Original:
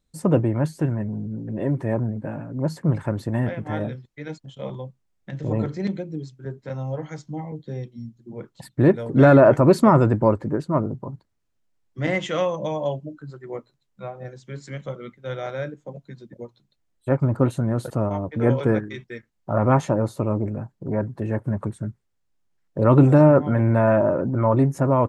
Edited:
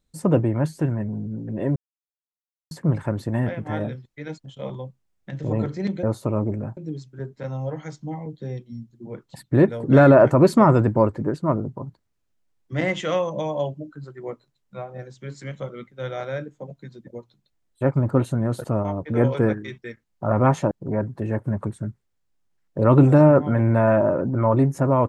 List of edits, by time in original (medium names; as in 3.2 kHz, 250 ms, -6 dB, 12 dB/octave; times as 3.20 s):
1.76–2.71 s: mute
19.97–20.71 s: move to 6.03 s